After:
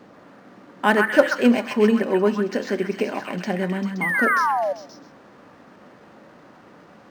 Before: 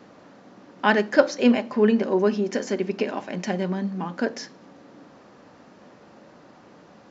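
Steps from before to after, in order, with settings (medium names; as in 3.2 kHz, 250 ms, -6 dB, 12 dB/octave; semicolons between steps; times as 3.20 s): painted sound fall, 4.01–4.73 s, 550–2200 Hz -24 dBFS; repeats whose band climbs or falls 131 ms, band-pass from 1.5 kHz, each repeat 0.7 oct, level 0 dB; decimation joined by straight lines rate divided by 4×; trim +1.5 dB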